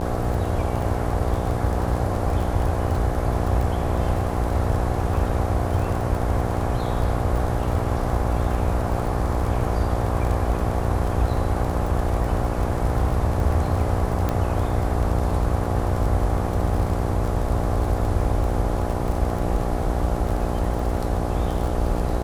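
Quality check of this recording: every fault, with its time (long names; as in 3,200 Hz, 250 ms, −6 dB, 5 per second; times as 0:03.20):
mains buzz 60 Hz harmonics 14 −27 dBFS
surface crackle 30 per second −27 dBFS
0:14.29: click −11 dBFS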